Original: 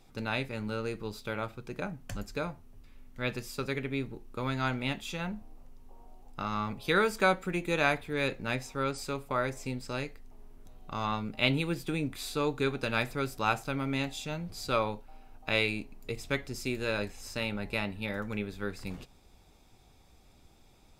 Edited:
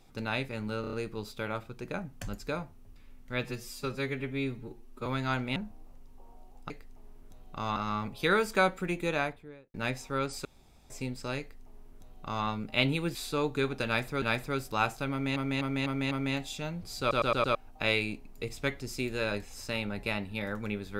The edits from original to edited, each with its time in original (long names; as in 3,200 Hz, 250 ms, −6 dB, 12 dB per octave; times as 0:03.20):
0:00.81: stutter 0.03 s, 5 plays
0:03.32–0:04.40: time-stretch 1.5×
0:04.90–0:05.27: remove
0:07.58–0:08.39: fade out and dull
0:09.10–0:09.55: fill with room tone
0:10.05–0:11.11: duplicate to 0:06.41
0:11.80–0:12.18: remove
0:12.89–0:13.25: repeat, 2 plays
0:13.78–0:14.03: repeat, 5 plays
0:14.67: stutter in place 0.11 s, 5 plays